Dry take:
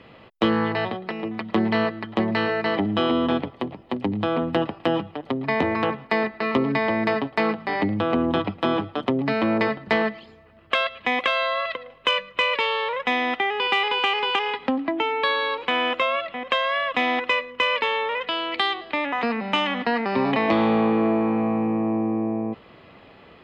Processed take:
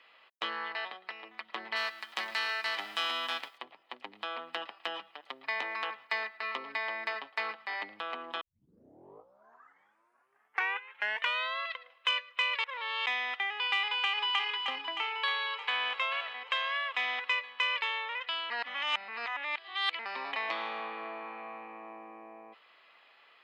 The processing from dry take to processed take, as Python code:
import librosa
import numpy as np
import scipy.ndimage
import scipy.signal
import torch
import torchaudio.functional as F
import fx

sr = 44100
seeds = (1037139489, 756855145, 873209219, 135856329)

y = fx.envelope_flatten(x, sr, power=0.6, at=(1.75, 3.57), fade=0.02)
y = fx.high_shelf(y, sr, hz=4300.0, db=5.5, at=(4.13, 6.37))
y = fx.echo_throw(y, sr, start_s=13.86, length_s=0.61, ms=310, feedback_pct=65, wet_db=-5.5)
y = fx.echo_throw(y, sr, start_s=15.09, length_s=0.8, ms=440, feedback_pct=65, wet_db=-11.0)
y = fx.edit(y, sr, fx.tape_start(start_s=8.41, length_s=3.15),
    fx.reverse_span(start_s=12.64, length_s=0.42),
    fx.reverse_span(start_s=18.5, length_s=1.49), tone=tone)
y = scipy.signal.sosfilt(scipy.signal.butter(2, 1200.0, 'highpass', fs=sr, output='sos'), y)
y = y * librosa.db_to_amplitude(-6.5)